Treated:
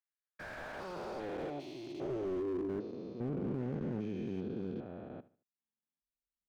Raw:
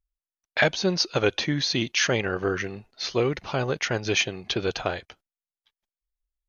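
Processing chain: stepped spectrum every 0.4 s; in parallel at -11.5 dB: overloaded stage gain 32.5 dB; 1.5–2.69 on the sum: fixed phaser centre 320 Hz, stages 8; band-pass sweep 1800 Hz -> 220 Hz, 0.04–3.13; on a send: feedback echo 74 ms, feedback 31%, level -18 dB; on the sum: slew limiter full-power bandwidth 6.3 Hz; gain +2 dB

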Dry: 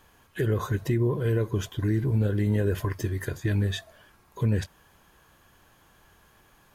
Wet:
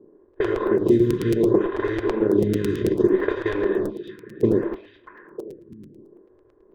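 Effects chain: per-bin compression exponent 0.4; tone controls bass -6 dB, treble -12 dB; shoebox room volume 740 m³, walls furnished, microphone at 1.3 m; gate with hold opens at -16 dBFS; compressor 4:1, threshold -24 dBFS, peak gain reduction 7 dB; bell 330 Hz +11.5 dB 0.7 oct; transient shaper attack +2 dB, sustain -5 dB; low-pass opened by the level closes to 450 Hz, open at -13.5 dBFS; on a send: delay with a stepping band-pass 0.317 s, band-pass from 3600 Hz, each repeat -1.4 oct, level -7 dB; on the sum: crackling interface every 0.11 s, samples 256, repeat, from 0.33; photocell phaser 0.66 Hz; gain +4.5 dB

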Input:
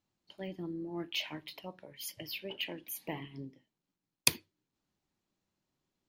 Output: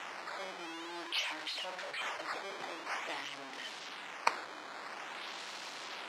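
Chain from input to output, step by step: zero-crossing step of -30 dBFS; decimation with a swept rate 9×, swing 160% 0.49 Hz; BPF 740–4900 Hz; gain -2.5 dB

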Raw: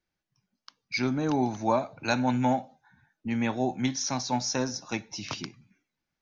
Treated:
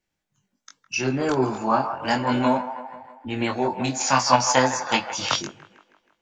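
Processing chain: on a send: band-limited delay 0.159 s, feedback 54%, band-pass 880 Hz, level -9 dB; on the sum: spectral gain 4–5.39, 470–5000 Hz +10 dB; chorus 0.33 Hz, delay 19.5 ms, depth 3.4 ms; formant shift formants +3 st; gain +7 dB

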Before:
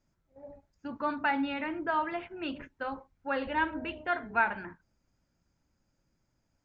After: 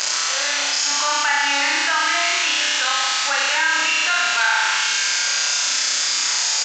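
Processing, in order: zero-crossing step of -31 dBFS; thin delay 0.115 s, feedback 82%, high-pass 2600 Hz, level -6 dB; in parallel at -8 dB: wrapped overs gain 15.5 dB; on the sum: HPF 1100 Hz 12 dB/oct; high shelf 2300 Hz +11.5 dB; doubler 39 ms -5.5 dB; flutter echo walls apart 5.5 m, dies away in 1.2 s; downsampling 16000 Hz; fast leveller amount 70%; gain -3 dB

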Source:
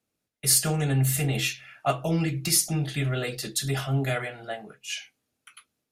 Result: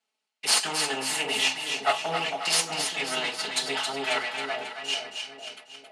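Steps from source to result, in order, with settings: minimum comb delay 4.6 ms; speaker cabinet 420–9400 Hz, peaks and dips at 520 Hz -5 dB, 830 Hz +9 dB, 1300 Hz +3 dB, 2100 Hz +4 dB, 2900 Hz +9 dB, 4300 Hz +6 dB; split-band echo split 710 Hz, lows 0.45 s, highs 0.271 s, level -6 dB

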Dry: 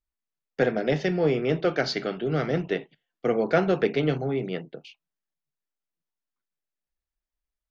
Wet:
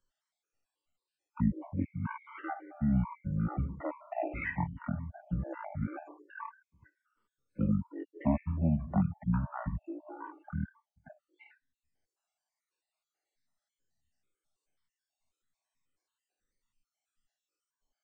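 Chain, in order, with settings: random spectral dropouts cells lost 63%; speed mistake 78 rpm record played at 33 rpm; three-band squash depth 40%; gain -4.5 dB

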